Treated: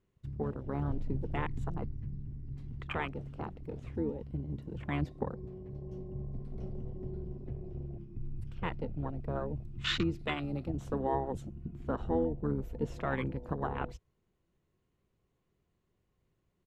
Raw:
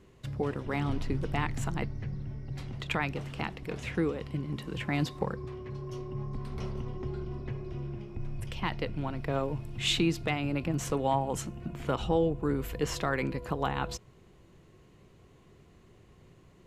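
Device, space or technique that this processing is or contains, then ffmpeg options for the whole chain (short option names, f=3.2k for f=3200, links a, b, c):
octave pedal: -filter_complex "[0:a]afwtdn=0.0158,asettb=1/sr,asplit=3[a][b][c];[a]atrim=end=10.194[d];[b]atrim=start=10.19:end=10.7,asetpts=PTS-STARTPTS,afade=t=in:d=0.004:c=qsin,afade=t=out:st=0.506:d=0.004:c=qsin,equalizer=f=100:t=o:w=0.67:g=-11,equalizer=f=4k:t=o:w=0.67:g=12,equalizer=f=10k:t=o:w=0.67:g=10[e];[c]atrim=start=10.696[f];[d][e]acrossfade=d=0.004:c1=hsin:c2=qsin[g];[g][f]acrossfade=d=0.004:c1=qsin:c2=hsin,asplit=2[h][i];[i]asetrate=22050,aresample=44100,atempo=2,volume=-4dB[j];[h][j]amix=inputs=2:normalize=0,volume=-5dB"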